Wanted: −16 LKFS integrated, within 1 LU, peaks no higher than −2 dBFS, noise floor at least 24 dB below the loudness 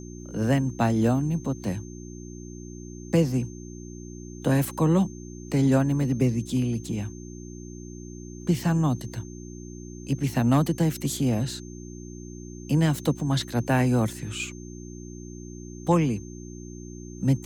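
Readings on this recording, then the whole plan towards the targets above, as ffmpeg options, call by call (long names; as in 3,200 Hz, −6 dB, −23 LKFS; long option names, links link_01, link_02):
mains hum 60 Hz; hum harmonics up to 360 Hz; level of the hum −38 dBFS; interfering tone 6,300 Hz; level of the tone −49 dBFS; integrated loudness −25.5 LKFS; sample peak −10.5 dBFS; target loudness −16.0 LKFS
→ -af "bandreject=frequency=60:width_type=h:width=4,bandreject=frequency=120:width_type=h:width=4,bandreject=frequency=180:width_type=h:width=4,bandreject=frequency=240:width_type=h:width=4,bandreject=frequency=300:width_type=h:width=4,bandreject=frequency=360:width_type=h:width=4"
-af "bandreject=frequency=6300:width=30"
-af "volume=9.5dB,alimiter=limit=-2dB:level=0:latency=1"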